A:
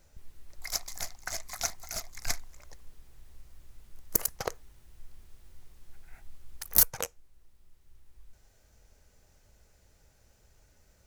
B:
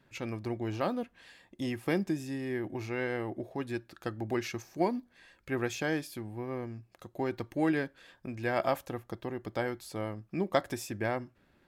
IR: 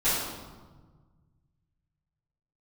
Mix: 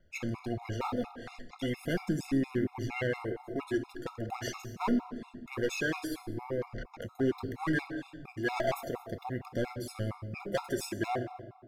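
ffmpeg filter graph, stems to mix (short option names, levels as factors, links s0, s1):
-filter_complex "[0:a]acrossover=split=2500[s0][s1];[s1]acompressor=threshold=0.0224:ratio=4:attack=1:release=60[s2];[s0][s2]amix=inputs=2:normalize=0,lowpass=f=3900:w=0.5412,lowpass=f=3900:w=1.3066,volume=0.631[s3];[1:a]agate=range=0.158:threshold=0.00141:ratio=16:detection=peak,aphaser=in_gain=1:out_gain=1:delay=3.2:decay=0.49:speed=0.41:type=triangular,asoftclip=type=hard:threshold=0.0473,volume=1.26,asplit=3[s4][s5][s6];[s5]volume=0.106[s7];[s6]apad=whole_len=487892[s8];[s3][s8]sidechaincompress=threshold=0.0251:ratio=8:attack=16:release=604[s9];[2:a]atrim=start_sample=2205[s10];[s7][s10]afir=irnorm=-1:irlink=0[s11];[s9][s4][s11]amix=inputs=3:normalize=0,afftfilt=real='re*gt(sin(2*PI*4.3*pts/sr)*(1-2*mod(floor(b*sr/1024/700),2)),0)':imag='im*gt(sin(2*PI*4.3*pts/sr)*(1-2*mod(floor(b*sr/1024/700),2)),0)':win_size=1024:overlap=0.75"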